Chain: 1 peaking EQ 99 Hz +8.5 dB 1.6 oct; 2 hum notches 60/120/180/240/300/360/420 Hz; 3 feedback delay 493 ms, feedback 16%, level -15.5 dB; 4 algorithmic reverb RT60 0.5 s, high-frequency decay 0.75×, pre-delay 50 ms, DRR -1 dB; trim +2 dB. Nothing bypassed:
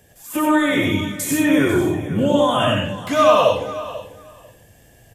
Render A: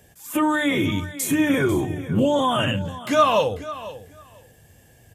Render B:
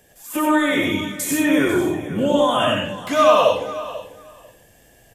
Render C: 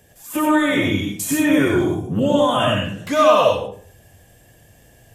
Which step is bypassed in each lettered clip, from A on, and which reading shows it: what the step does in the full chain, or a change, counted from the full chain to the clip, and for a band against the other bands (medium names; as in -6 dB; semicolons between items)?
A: 4, momentary loudness spread change -2 LU; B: 1, 125 Hz band -6.5 dB; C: 3, momentary loudness spread change -5 LU